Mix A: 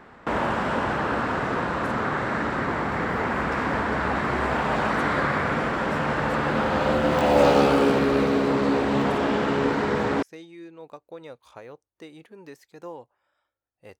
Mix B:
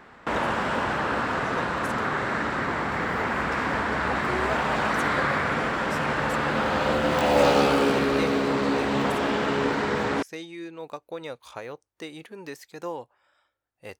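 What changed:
speech +7.0 dB
master: add tilt shelving filter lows −3 dB, about 1,300 Hz

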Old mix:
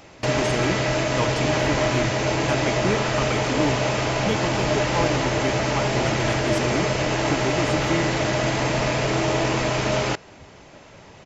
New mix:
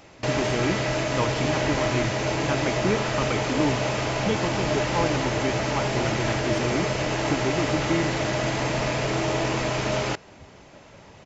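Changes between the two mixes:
speech: add high-frequency loss of the air 120 metres
first sound −3.0 dB

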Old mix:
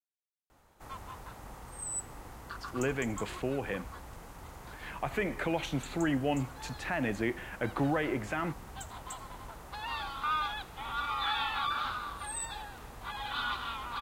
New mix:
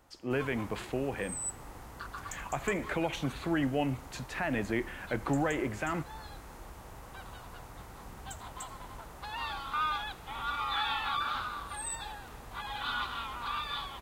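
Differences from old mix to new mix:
speech: entry −2.50 s
background: entry −0.50 s

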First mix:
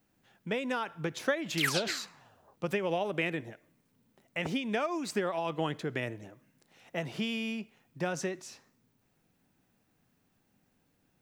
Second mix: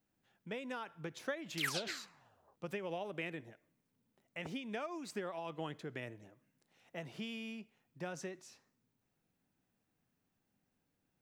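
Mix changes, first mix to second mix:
speech −10.0 dB
background −7.0 dB

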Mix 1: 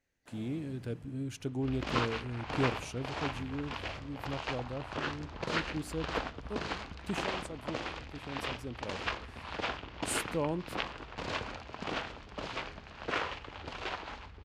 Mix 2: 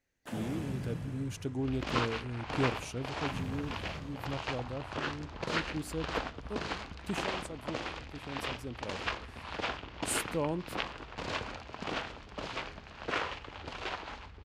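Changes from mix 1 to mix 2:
first sound +12.0 dB
master: add high-shelf EQ 10,000 Hz +5 dB

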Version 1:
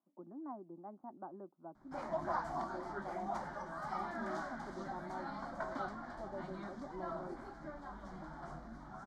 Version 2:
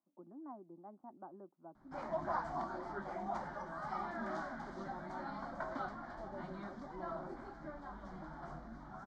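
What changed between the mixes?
speech −3.5 dB
background: add high-frequency loss of the air 65 metres

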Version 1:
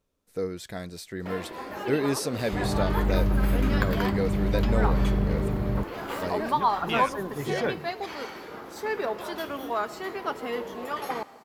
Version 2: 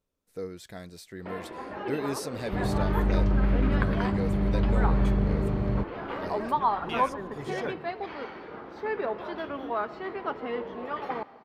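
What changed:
speech −6.0 dB
first sound: add high-frequency loss of the air 320 metres

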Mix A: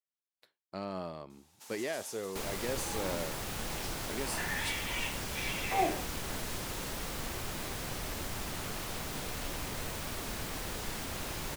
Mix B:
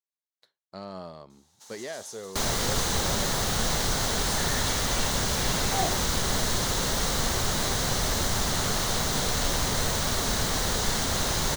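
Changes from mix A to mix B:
second sound +12.0 dB
master: add thirty-one-band graphic EQ 315 Hz −6 dB, 2,500 Hz −8 dB, 4,000 Hz +5 dB, 6,300 Hz +6 dB, 12,500 Hz −7 dB

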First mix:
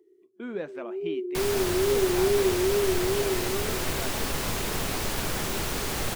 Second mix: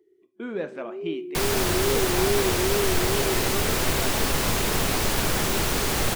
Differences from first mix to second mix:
speech: send on
first sound: send −11.0 dB
second sound +5.5 dB

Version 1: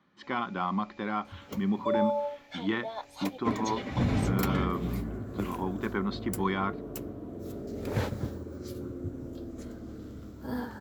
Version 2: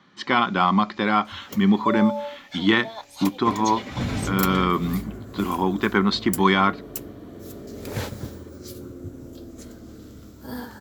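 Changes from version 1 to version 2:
speech +10.5 dB
master: add high-shelf EQ 3,000 Hz +11 dB

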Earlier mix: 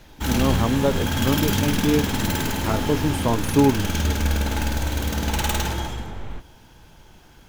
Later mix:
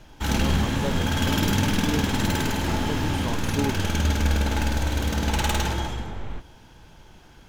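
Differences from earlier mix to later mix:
speech −10.5 dB
background: add high-shelf EQ 12,000 Hz −12 dB

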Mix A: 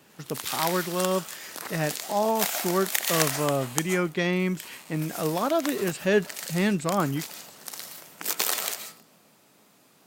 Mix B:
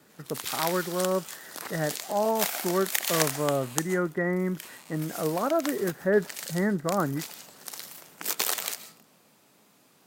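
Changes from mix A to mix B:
speech: add Chebyshev low-pass with heavy ripple 2,000 Hz, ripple 3 dB
background: send −7.5 dB

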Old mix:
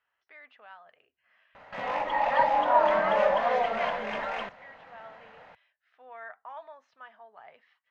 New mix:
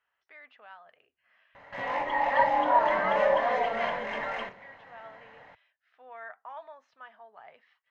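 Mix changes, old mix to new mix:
background −4.5 dB
reverb: on, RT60 0.40 s

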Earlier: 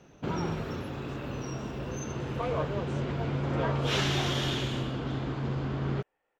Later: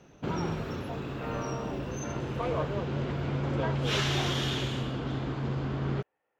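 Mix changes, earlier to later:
speech: add high-frequency loss of the air 200 metres
second sound: entry −2.30 s

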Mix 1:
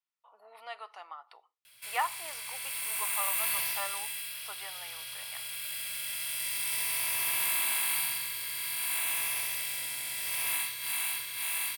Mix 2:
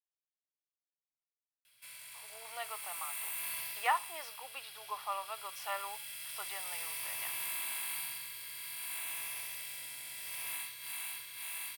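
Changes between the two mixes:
speech: entry +1.90 s
background −9.0 dB

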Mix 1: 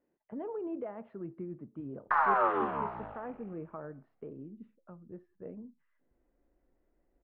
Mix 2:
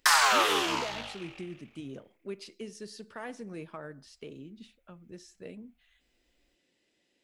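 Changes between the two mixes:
background: entry −2.05 s
master: remove low-pass filter 1,300 Hz 24 dB per octave

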